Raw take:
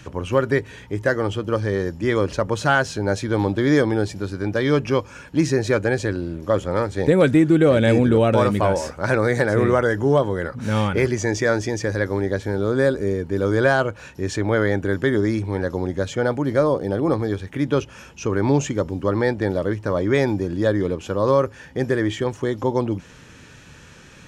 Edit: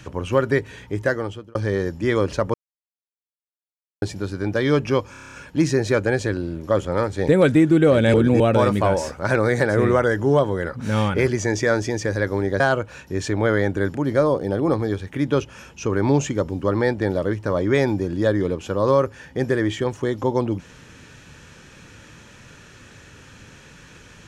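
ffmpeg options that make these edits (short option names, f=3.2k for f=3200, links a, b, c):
-filter_complex "[0:a]asplit=15[a][b][c][d][e][f][g][h][i][j][k][l][m][n][o];[a]atrim=end=1.55,asetpts=PTS-STARTPTS,afade=t=out:st=1.02:d=0.53[p];[b]atrim=start=1.55:end=2.54,asetpts=PTS-STARTPTS,afade=t=in:d=0.004:c=hsin,afade=t=out:st=0.986:d=0.004:c=hsin[q];[c]atrim=start=2.54:end=4.02,asetpts=PTS-STARTPTS,volume=0[r];[d]atrim=start=4.02:end=5.142,asetpts=PTS-STARTPTS,afade=t=in:d=0.004:c=hsin[s];[e]atrim=start=5.108:end=5.142[t];[f]atrim=start=5.108:end=5.142[u];[g]atrim=start=5.108:end=5.142[v];[h]atrim=start=5.108:end=5.142[w];[i]atrim=start=5.108:end=5.142[x];[j]atrim=start=5.108:end=5.142[y];[k]atrim=start=5.108:end=7.932[z];[l]atrim=start=7.928:end=8.192,asetpts=PTS-STARTPTS,areverse[aa];[m]atrim=start=8.188:end=12.392[ab];[n]atrim=start=13.678:end=15.032[ac];[o]atrim=start=16.348[ad];[p][q][r][s]concat=n=4:v=0:a=1[ae];[ae][t]acrossfade=d=0.004:c1=hsin:c2=hsin[af];[af][u]acrossfade=d=0.004:c1=hsin:c2=hsin[ag];[ag][v]acrossfade=d=0.004:c1=hsin:c2=hsin[ah];[ah][w]acrossfade=d=0.004:c1=hsin:c2=hsin[ai];[ai][x]acrossfade=d=0.004:c1=hsin:c2=hsin[aj];[aj][y]acrossfade=d=0.004:c1=hsin:c2=hsin[ak];[ak][z]acrossfade=d=0.004:c1=hsin:c2=hsin[al];[al][aa]acrossfade=d=0.004:c1=hsin:c2=hsin[am];[am][ab]acrossfade=d=0.004:c1=hsin:c2=hsin[an];[an][ac]acrossfade=d=0.004:c1=hsin:c2=hsin[ao];[ao][ad]acrossfade=d=0.004:c1=hsin:c2=hsin"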